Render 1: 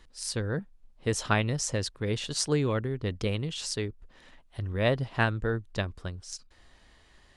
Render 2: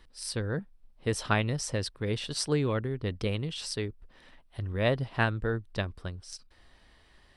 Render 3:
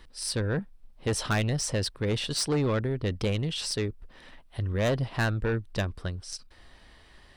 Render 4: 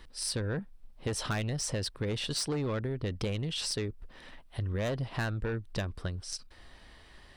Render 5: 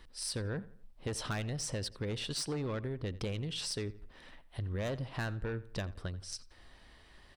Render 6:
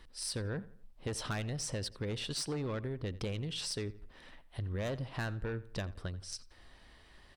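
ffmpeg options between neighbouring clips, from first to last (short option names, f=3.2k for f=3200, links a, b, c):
-af "equalizer=f=6.8k:w=7.8:g=-14.5,volume=-1dB"
-af "asoftclip=type=tanh:threshold=-26.5dB,volume=5.5dB"
-af "acompressor=threshold=-30dB:ratio=6"
-filter_complex "[0:a]asplit=2[a][b];[b]adelay=86,lowpass=f=3.8k:p=1,volume=-18dB,asplit=2[c][d];[d]adelay=86,lowpass=f=3.8k:p=1,volume=0.4,asplit=2[e][f];[f]adelay=86,lowpass=f=3.8k:p=1,volume=0.4[g];[a][c][e][g]amix=inputs=4:normalize=0,volume=-4dB"
-ar 48000 -c:a libmp3lame -b:a 160k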